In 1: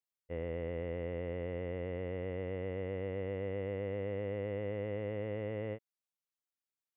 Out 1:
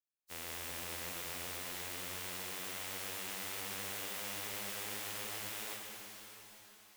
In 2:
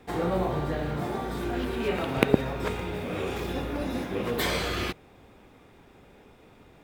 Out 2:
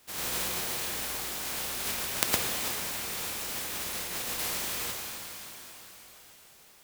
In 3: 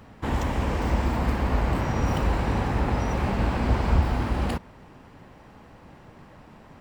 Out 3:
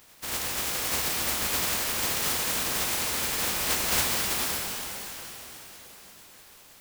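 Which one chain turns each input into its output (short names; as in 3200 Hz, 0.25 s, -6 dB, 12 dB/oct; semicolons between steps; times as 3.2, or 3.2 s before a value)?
spectral contrast lowered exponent 0.12; shimmer reverb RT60 3.8 s, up +12 st, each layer -8 dB, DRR 0.5 dB; gain -7 dB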